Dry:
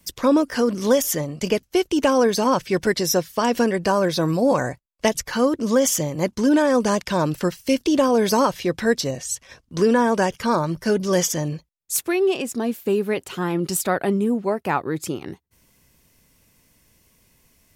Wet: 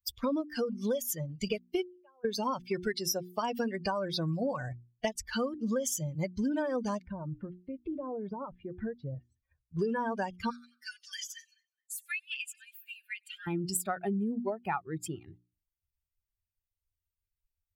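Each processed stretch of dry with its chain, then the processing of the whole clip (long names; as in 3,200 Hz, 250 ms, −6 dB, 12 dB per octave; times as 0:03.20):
0:01.83–0:02.25: low-pass filter 1,000 Hz + first difference
0:07.04–0:09.79: low-pass filter 1,300 Hz + downward compressor 8 to 1, threshold −23 dBFS
0:10.50–0:13.47: Butterworth high-pass 1,500 Hz 48 dB per octave + downward compressor, threshold −28 dBFS + echo with a time of its own for lows and highs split 2,600 Hz, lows 212 ms, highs 96 ms, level −13 dB
whole clip: spectral dynamics exaggerated over time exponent 2; mains-hum notches 60/120/180/240/300/360 Hz; downward compressor 6 to 1, threshold −32 dBFS; level +2.5 dB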